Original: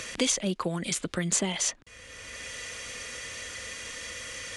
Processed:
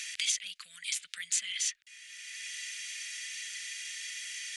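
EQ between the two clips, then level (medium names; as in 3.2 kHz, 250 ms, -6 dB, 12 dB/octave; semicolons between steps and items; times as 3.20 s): inverse Chebyshev high-pass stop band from 970 Hz, stop band 40 dB; dynamic bell 7.5 kHz, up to -4 dB, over -38 dBFS, Q 0.72; 0.0 dB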